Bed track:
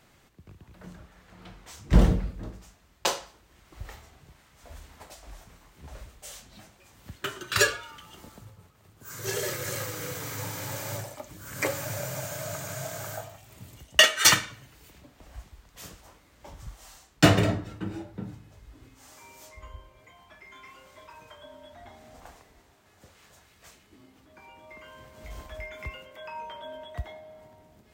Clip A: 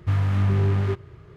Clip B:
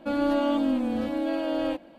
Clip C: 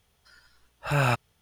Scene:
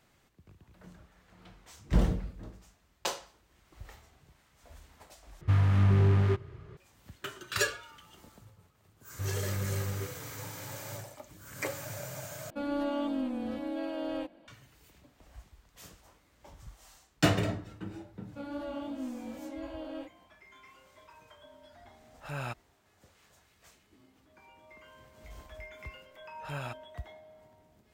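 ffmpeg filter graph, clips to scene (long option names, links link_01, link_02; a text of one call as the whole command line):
ffmpeg -i bed.wav -i cue0.wav -i cue1.wav -i cue2.wav -filter_complex "[1:a]asplit=2[link_01][link_02];[2:a]asplit=2[link_03][link_04];[3:a]asplit=2[link_05][link_06];[0:a]volume=-7dB[link_07];[link_04]flanger=delay=15.5:depth=3.3:speed=2.7[link_08];[link_06]alimiter=limit=-14dB:level=0:latency=1:release=428[link_09];[link_07]asplit=3[link_10][link_11][link_12];[link_10]atrim=end=5.414[link_13];[link_01]atrim=end=1.36,asetpts=PTS-STARTPTS,volume=-2.5dB[link_14];[link_11]atrim=start=6.766:end=12.504[link_15];[link_03]atrim=end=1.98,asetpts=PTS-STARTPTS,volume=-8dB[link_16];[link_12]atrim=start=14.476[link_17];[link_02]atrim=end=1.36,asetpts=PTS-STARTPTS,volume=-13.5dB,afade=type=in:duration=0.004:curve=hsin,afade=type=out:start_time=1.356:duration=0.004:curve=hsin,adelay=9120[link_18];[link_08]atrim=end=1.98,asetpts=PTS-STARTPTS,volume=-11.5dB,afade=type=in:duration=0.004:curve=hsin,afade=type=out:start_time=1.976:duration=0.004:curve=hsin,adelay=18300[link_19];[link_05]atrim=end=1.41,asetpts=PTS-STARTPTS,volume=-14dB,afade=type=in:duration=0.004:curve=hsin,afade=type=out:start_time=1.406:duration=0.004:curve=hsin,adelay=21380[link_20];[link_09]atrim=end=1.41,asetpts=PTS-STARTPTS,volume=-14dB,afade=type=in:duration=0.004:curve=hsin,afade=type=out:start_time=1.406:duration=0.004:curve=hsin,adelay=25580[link_21];[link_13][link_14]acrossfade=duration=0.004:curve1=hsin:curve2=hsin[link_22];[link_22][link_15]acrossfade=duration=0.004:curve1=hsin:curve2=hsin[link_23];[link_23][link_16]acrossfade=duration=0.004:curve1=hsin:curve2=hsin[link_24];[link_24][link_17]acrossfade=duration=0.004:curve1=hsin:curve2=hsin[link_25];[link_25][link_18][link_19][link_20][link_21]amix=inputs=5:normalize=0" out.wav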